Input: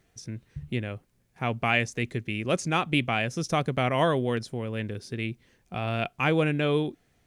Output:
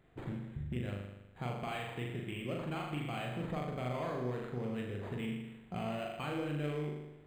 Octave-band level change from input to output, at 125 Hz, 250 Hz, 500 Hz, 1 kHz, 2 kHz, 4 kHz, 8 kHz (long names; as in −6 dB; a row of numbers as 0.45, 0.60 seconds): −9.0, −9.5, −11.0, −12.0, −15.5, −14.0, −18.5 decibels